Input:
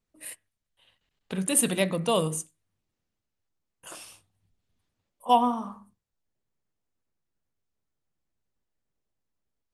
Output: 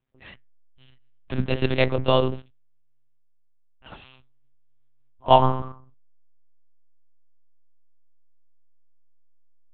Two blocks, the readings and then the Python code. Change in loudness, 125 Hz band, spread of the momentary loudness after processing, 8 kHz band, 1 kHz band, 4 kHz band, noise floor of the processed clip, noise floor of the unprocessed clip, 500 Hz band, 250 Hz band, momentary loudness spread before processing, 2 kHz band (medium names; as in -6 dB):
+3.5 dB, +8.5 dB, 19 LU, under -40 dB, +4.0 dB, +3.5 dB, -57 dBFS, -83 dBFS, +6.5 dB, +0.5 dB, 21 LU, +4.5 dB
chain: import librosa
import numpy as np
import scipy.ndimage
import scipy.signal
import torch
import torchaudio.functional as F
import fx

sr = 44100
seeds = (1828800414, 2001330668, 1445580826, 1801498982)

p1 = fx.backlash(x, sr, play_db=-29.5)
p2 = x + (p1 * 10.0 ** (-4.0 / 20.0))
p3 = fx.lpc_monotone(p2, sr, seeds[0], pitch_hz=130.0, order=8)
y = p3 * 10.0 ** (1.5 / 20.0)